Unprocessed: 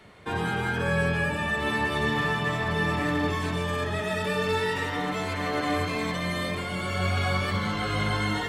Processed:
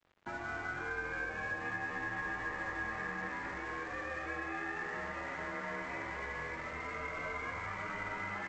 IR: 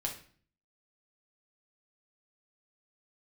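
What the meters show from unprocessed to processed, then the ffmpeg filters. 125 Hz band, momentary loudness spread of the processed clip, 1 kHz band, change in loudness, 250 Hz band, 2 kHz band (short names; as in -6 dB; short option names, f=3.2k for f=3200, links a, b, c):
-21.5 dB, 3 LU, -11.0 dB, -12.0 dB, -17.5 dB, -8.0 dB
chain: -filter_complex "[0:a]highpass=f=170:t=q:w=0.5412,highpass=f=170:t=q:w=1.307,lowpass=f=2.2k:t=q:w=0.5176,lowpass=f=2.2k:t=q:w=0.7071,lowpass=f=2.2k:t=q:w=1.932,afreqshift=-110,bandreject=f=60:t=h:w=6,bandreject=f=120:t=h:w=6,bandreject=f=180:t=h:w=6,bandreject=f=240:t=h:w=6,asplit=9[a][b][c][d][e][f][g][h][i];[b]adelay=221,afreqshift=83,volume=-8dB[j];[c]adelay=442,afreqshift=166,volume=-12.3dB[k];[d]adelay=663,afreqshift=249,volume=-16.6dB[l];[e]adelay=884,afreqshift=332,volume=-20.9dB[m];[f]adelay=1105,afreqshift=415,volume=-25.2dB[n];[g]adelay=1326,afreqshift=498,volume=-29.5dB[o];[h]adelay=1547,afreqshift=581,volume=-33.8dB[p];[i]adelay=1768,afreqshift=664,volume=-38.1dB[q];[a][j][k][l][m][n][o][p][q]amix=inputs=9:normalize=0,aresample=16000,aeval=exprs='sgn(val(0))*max(abs(val(0))-0.00376,0)':c=same,aresample=44100,acrossover=split=530|1500[r][s][t];[r]acompressor=threshold=-45dB:ratio=4[u];[s]acompressor=threshold=-42dB:ratio=4[v];[t]acompressor=threshold=-35dB:ratio=4[w];[u][v][w]amix=inputs=3:normalize=0,volume=-4dB"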